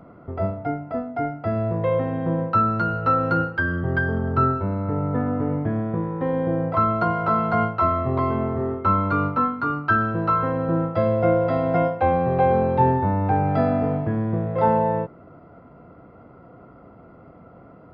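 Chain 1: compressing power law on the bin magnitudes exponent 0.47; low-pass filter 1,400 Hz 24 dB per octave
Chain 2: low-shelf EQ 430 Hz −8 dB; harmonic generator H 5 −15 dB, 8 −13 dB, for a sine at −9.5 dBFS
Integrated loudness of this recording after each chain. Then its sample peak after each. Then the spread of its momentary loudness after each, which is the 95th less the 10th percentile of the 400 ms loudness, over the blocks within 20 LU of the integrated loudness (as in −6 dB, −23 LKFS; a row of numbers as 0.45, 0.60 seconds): −23.0, −20.5 LKFS; −6.5, −10.0 dBFS; 7, 7 LU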